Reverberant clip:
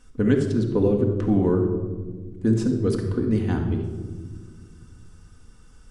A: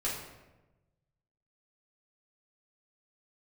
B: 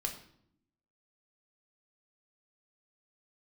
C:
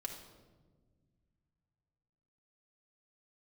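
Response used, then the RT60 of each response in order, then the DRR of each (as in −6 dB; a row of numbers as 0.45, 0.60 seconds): C; 1.1 s, 0.70 s, non-exponential decay; −7.5, 2.5, 1.0 decibels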